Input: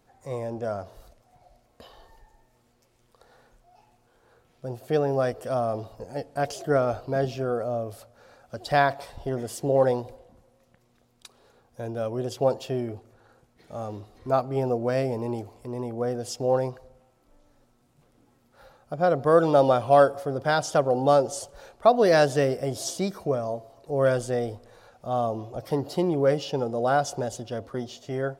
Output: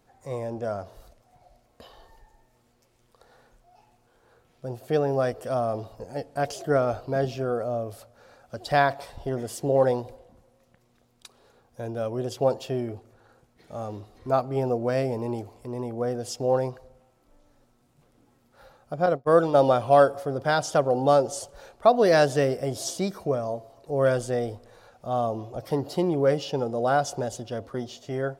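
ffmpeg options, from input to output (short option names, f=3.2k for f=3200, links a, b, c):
-filter_complex "[0:a]asettb=1/sr,asplit=3[a][b][c];[a]atrim=end=19.064[d];[b]atrim=start=19.06:end=19.55,asetpts=PTS-STARTPTS,afade=t=in:d=0.004:c=qsin,afade=t=out:st=0.486:d=0.004:c=qsin,agate=range=-33dB:threshold=-20dB:ratio=3:release=100:detection=peak[e];[c]atrim=start=19.546[f];[d][e]acrossfade=d=0.004:c1=hsin:c2=qsin[g];[g][f]acrossfade=d=0.004:c1=qsin:c2=hsin"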